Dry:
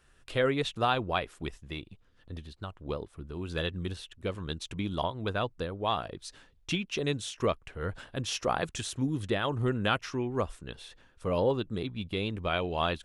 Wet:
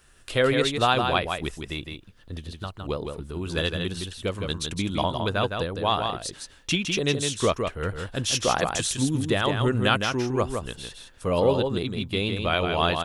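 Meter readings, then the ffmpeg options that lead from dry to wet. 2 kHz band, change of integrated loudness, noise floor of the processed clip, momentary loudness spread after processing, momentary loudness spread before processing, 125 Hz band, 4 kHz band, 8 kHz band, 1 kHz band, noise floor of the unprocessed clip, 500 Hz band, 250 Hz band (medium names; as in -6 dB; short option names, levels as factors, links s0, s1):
+7.0 dB, +7.0 dB, -53 dBFS, 13 LU, 14 LU, +6.0 dB, +9.0 dB, +12.0 dB, +6.5 dB, -63 dBFS, +6.5 dB, +6.0 dB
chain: -af "highshelf=f=4900:g=8.5,aecho=1:1:161:0.531,volume=1.78"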